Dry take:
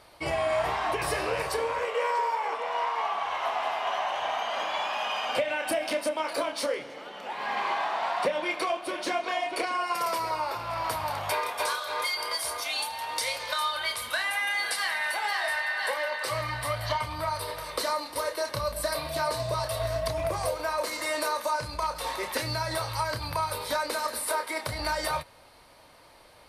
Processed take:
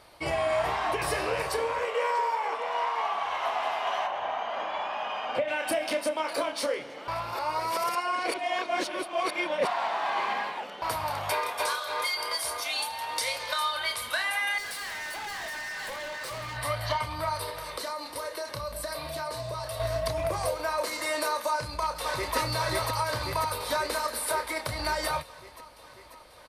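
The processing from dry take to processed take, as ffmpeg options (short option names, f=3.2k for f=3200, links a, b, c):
-filter_complex "[0:a]asplit=3[a][b][c];[a]afade=t=out:st=4.06:d=0.02[d];[b]lowpass=f=1.5k:p=1,afade=t=in:st=4.06:d=0.02,afade=t=out:st=5.47:d=0.02[e];[c]afade=t=in:st=5.47:d=0.02[f];[d][e][f]amix=inputs=3:normalize=0,asettb=1/sr,asplit=3[g][h][i];[g]atrim=end=14.584[j];[h]atrim=start=14.58:end=16.57,asetpts=PTS-STARTPTS,afade=t=in:d=0.004:c=qsin,afade=t=out:st=1.986:d=0.004:c=qsin,volume=35dB,asoftclip=hard,volume=-35dB[k];[i]atrim=start=16.566[l];[j][k]acrossfade=d=0.004:c1=hsin:c2=qsin[m];[m][l]acrossfade=d=0.004:c1=qsin:c2=hsin,asettb=1/sr,asplit=3[n][o][p];[n]atrim=end=17.494[q];[o]atrim=start=17.49:end=19.8,asetpts=PTS-STARTPTS,afade=t=in:d=0.004:c=qsin,afade=t=out:st=2.306:d=0.004:c=qsin,acompressor=threshold=-33dB:ratio=2.5:attack=3.2:release=140:knee=1:detection=peak[r];[p]atrim=start=19.796[s];[q][r]acrossfade=d=0.004:c1=hsin:c2=qsin[t];[t][s]acrossfade=d=0.004:c1=qsin:c2=hsin,asplit=2[u][v];[v]afade=t=in:st=21.51:d=0.01,afade=t=out:st=22.36:d=0.01,aecho=0:1:540|1080|1620|2160|2700|3240|3780|4320|4860|5400|5940|6480:0.841395|0.588977|0.412284|0.288599|0.202019|0.141413|0.0989893|0.0692925|0.0485048|0.0339533|0.0237673|0.0166371[w];[u][w]amix=inputs=2:normalize=0,asplit=3[x][y][z];[x]atrim=end=7.082[aa];[y]atrim=start=7.078:end=10.822,asetpts=PTS-STARTPTS,areverse[ab];[z]atrim=start=10.818[ac];[aa][ab]acrossfade=d=0.004:c1=hsin:c2=hsin[ad];[ad][ac]acrossfade=d=0.004:c1=hsin:c2=hsin"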